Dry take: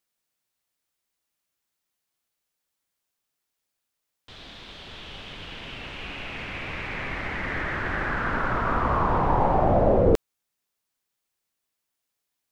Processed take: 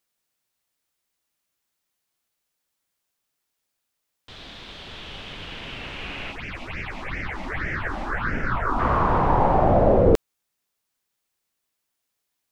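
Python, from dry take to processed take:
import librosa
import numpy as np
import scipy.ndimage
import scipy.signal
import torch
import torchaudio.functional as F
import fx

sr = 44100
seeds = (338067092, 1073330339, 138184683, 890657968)

y = fx.phaser_stages(x, sr, stages=6, low_hz=110.0, high_hz=1100.0, hz=fx.line((6.31, 3.6), (8.78, 0.98)), feedback_pct=25, at=(6.31, 8.78), fade=0.02)
y = y * librosa.db_to_amplitude(2.5)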